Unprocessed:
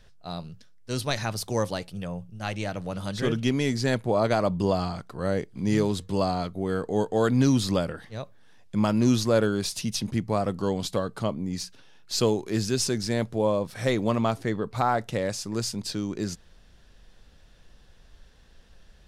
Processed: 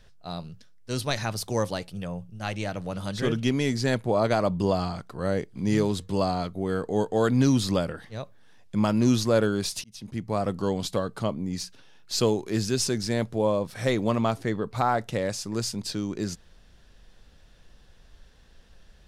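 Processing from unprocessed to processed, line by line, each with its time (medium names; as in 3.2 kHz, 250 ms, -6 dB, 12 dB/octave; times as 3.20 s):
9.84–10.46 s: fade in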